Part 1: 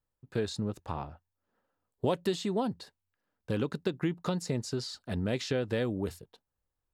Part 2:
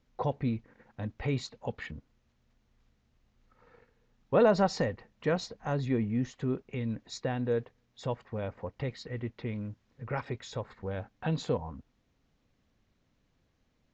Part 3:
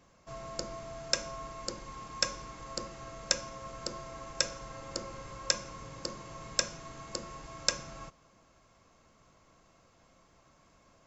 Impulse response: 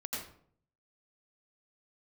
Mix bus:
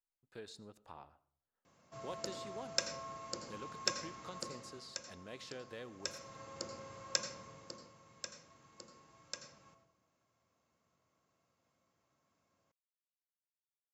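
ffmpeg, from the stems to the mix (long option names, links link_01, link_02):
-filter_complex "[0:a]equalizer=frequency=95:width=0.31:gain=-12.5,volume=-12.5dB,asplit=2[link_01][link_02];[link_02]volume=-18.5dB[link_03];[2:a]highpass=frequency=83:width=0.5412,highpass=frequency=83:width=1.3066,adelay=1650,volume=3dB,afade=type=out:start_time=4.37:duration=0.59:silence=0.298538,afade=type=in:start_time=5.92:duration=0.47:silence=0.334965,afade=type=out:start_time=7.25:duration=0.7:silence=0.316228,asplit=2[link_04][link_05];[link_05]volume=-6.5dB[link_06];[3:a]atrim=start_sample=2205[link_07];[link_03][link_06]amix=inputs=2:normalize=0[link_08];[link_08][link_07]afir=irnorm=-1:irlink=0[link_09];[link_01][link_04][link_09]amix=inputs=3:normalize=0,aeval=exprs='0.316*(cos(1*acos(clip(val(0)/0.316,-1,1)))-cos(1*PI/2))+0.00562*(cos(7*acos(clip(val(0)/0.316,-1,1)))-cos(7*PI/2))':channel_layout=same"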